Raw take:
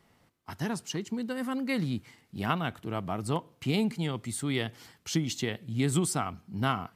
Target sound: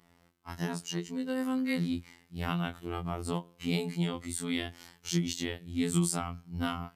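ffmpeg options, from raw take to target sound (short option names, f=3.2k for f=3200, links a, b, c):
-filter_complex "[0:a]acrossover=split=210|3000[a][b][c];[b]acompressor=threshold=-31dB:ratio=6[d];[a][d][c]amix=inputs=3:normalize=0,afftfilt=real='hypot(re,im)*cos(PI*b)':imag='0':win_size=2048:overlap=0.75,afftfilt=real='re*2*eq(mod(b,4),0)':imag='im*2*eq(mod(b,4),0)':win_size=2048:overlap=0.75"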